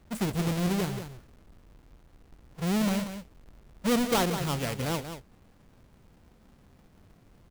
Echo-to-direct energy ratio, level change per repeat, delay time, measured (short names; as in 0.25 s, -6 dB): -9.5 dB, no steady repeat, 0.183 s